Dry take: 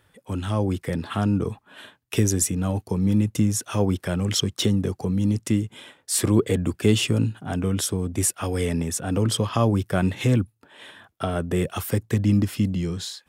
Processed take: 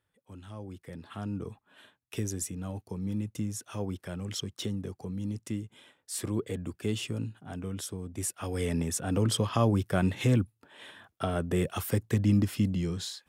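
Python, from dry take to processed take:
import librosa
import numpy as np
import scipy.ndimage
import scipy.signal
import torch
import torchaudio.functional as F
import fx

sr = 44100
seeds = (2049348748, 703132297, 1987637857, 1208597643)

y = fx.gain(x, sr, db=fx.line((0.67, -19.0), (1.4, -12.5), (8.11, -12.5), (8.78, -4.5)))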